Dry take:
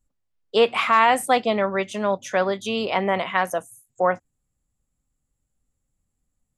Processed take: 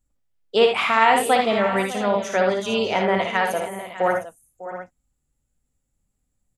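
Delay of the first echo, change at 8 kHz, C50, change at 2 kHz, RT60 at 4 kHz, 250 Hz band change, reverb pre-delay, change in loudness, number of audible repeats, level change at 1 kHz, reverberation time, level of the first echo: 58 ms, +2.0 dB, no reverb audible, +2.0 dB, no reverb audible, +2.0 dB, no reverb audible, +1.5 dB, 4, +1.0 dB, no reverb audible, −5.5 dB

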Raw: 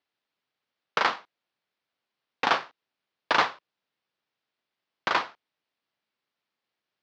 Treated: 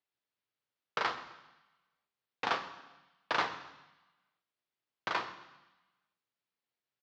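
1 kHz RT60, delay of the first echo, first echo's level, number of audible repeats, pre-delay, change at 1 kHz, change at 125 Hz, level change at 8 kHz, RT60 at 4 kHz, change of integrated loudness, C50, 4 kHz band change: 1.1 s, 132 ms, −20.0 dB, 2, 3 ms, −8.5 dB, −5.0 dB, −8.0 dB, 1.1 s, −9.0 dB, 12.0 dB, −8.5 dB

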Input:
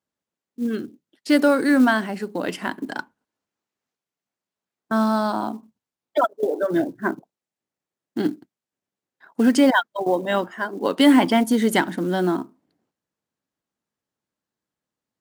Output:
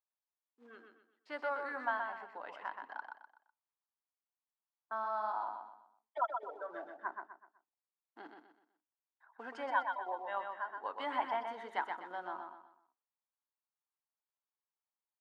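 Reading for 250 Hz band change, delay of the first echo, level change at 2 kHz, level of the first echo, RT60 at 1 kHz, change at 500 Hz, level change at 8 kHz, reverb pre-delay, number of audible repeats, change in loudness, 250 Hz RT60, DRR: −36.0 dB, 125 ms, −15.5 dB, −5.5 dB, no reverb audible, −20.5 dB, below −35 dB, no reverb audible, 4, −18.5 dB, no reverb audible, no reverb audible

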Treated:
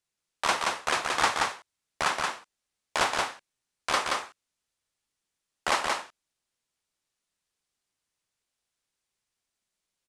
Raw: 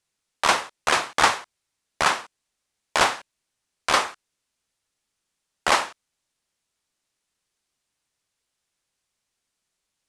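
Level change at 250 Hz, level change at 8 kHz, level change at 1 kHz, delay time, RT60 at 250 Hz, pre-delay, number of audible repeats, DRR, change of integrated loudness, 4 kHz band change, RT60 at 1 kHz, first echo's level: −4.5 dB, −4.5 dB, −4.5 dB, 177 ms, no reverb audible, no reverb audible, 1, no reverb audible, −5.5 dB, −4.5 dB, no reverb audible, −3.0 dB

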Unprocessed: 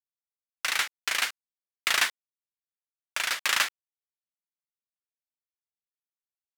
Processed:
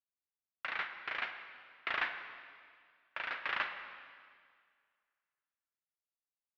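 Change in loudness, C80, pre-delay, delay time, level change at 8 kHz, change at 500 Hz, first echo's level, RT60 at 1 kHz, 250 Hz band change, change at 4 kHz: −12.0 dB, 8.5 dB, 27 ms, no echo audible, below −40 dB, −5.5 dB, no echo audible, 2.0 s, −5.5 dB, −17.0 dB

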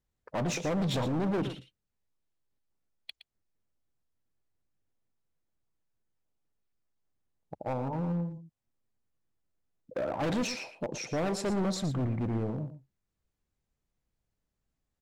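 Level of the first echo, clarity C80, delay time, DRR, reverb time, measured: −12.0 dB, no reverb audible, 116 ms, no reverb audible, no reverb audible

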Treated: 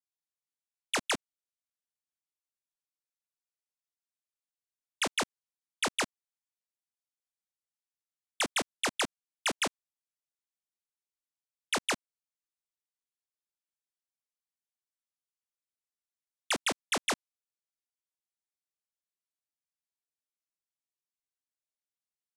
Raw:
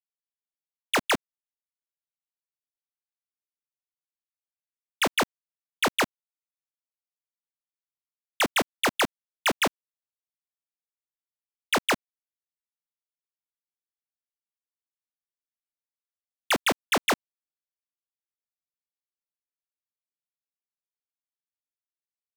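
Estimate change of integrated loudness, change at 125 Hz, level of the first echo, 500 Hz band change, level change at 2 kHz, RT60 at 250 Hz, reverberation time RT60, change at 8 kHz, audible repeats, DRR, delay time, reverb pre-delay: −6.0 dB, −8.5 dB, no echo audible, −8.5 dB, −7.0 dB, no reverb audible, no reverb audible, −1.5 dB, no echo audible, no reverb audible, no echo audible, no reverb audible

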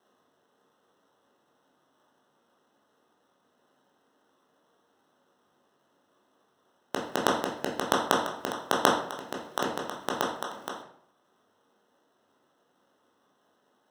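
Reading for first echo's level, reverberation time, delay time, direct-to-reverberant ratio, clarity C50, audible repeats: no echo audible, 0.65 s, no echo audible, −2.5 dB, 5.0 dB, no echo audible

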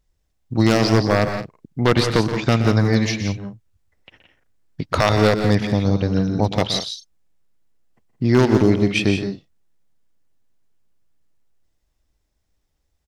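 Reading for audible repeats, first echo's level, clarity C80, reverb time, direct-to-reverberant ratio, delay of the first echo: 3, −11.5 dB, no reverb audible, no reverb audible, no reverb audible, 122 ms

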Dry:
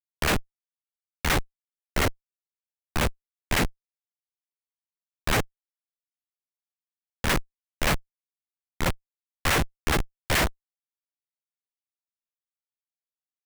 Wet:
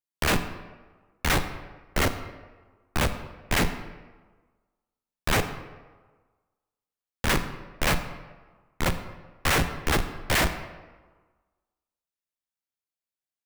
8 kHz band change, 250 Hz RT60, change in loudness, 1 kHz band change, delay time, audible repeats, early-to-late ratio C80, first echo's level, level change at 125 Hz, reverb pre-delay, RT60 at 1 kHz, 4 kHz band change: 0.0 dB, 1.3 s, 0.0 dB, +0.5 dB, no echo audible, no echo audible, 11.5 dB, no echo audible, +0.5 dB, 28 ms, 1.4 s, +0.5 dB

